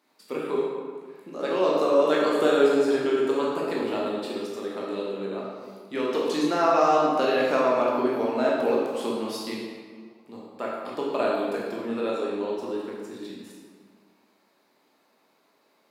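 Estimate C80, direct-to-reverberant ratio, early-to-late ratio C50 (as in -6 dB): 1.5 dB, -4.5 dB, -0.5 dB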